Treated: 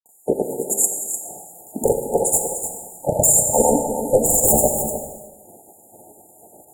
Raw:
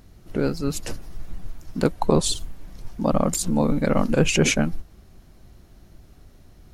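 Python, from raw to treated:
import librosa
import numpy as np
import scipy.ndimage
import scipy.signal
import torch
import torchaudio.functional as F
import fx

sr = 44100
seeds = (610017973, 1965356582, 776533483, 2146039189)

p1 = fx.filter_lfo_highpass(x, sr, shape='sine', hz=2.1, low_hz=540.0, high_hz=6900.0, q=0.71)
p2 = fx.fold_sine(p1, sr, drive_db=14, ceiling_db=-10.0)
p3 = fx.granulator(p2, sr, seeds[0], grain_ms=100.0, per_s=20.0, spray_ms=100.0, spread_st=0)
p4 = fx.brickwall_bandstop(p3, sr, low_hz=910.0, high_hz=6800.0)
p5 = p4 + fx.echo_single(p4, sr, ms=300, db=-9.5, dry=0)
p6 = fx.rev_gated(p5, sr, seeds[1], gate_ms=490, shape='falling', drr_db=4.0)
y = F.gain(torch.from_numpy(p6), 3.5).numpy()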